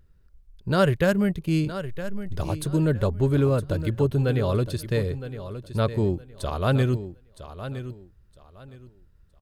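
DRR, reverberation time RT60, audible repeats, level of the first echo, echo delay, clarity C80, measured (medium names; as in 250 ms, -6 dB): no reverb, no reverb, 2, -12.0 dB, 964 ms, no reverb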